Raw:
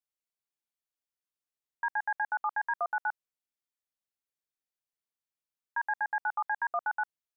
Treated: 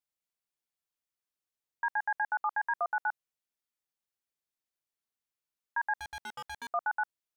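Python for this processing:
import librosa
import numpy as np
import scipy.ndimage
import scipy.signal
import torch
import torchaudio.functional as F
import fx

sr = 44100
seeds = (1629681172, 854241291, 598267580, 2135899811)

y = fx.clip_hard(x, sr, threshold_db=-39.0, at=(5.98, 6.7))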